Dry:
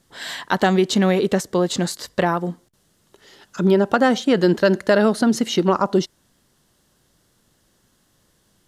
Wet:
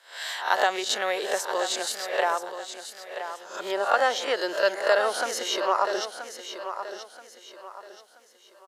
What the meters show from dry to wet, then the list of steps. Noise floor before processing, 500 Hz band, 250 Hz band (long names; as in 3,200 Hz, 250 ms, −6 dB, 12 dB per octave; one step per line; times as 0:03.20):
−63 dBFS, −7.0 dB, −22.5 dB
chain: peak hold with a rise ahead of every peak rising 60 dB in 0.41 s
high-pass filter 530 Hz 24 dB per octave
on a send: repeating echo 979 ms, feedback 35%, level −10 dB
on the sum: level −4 dB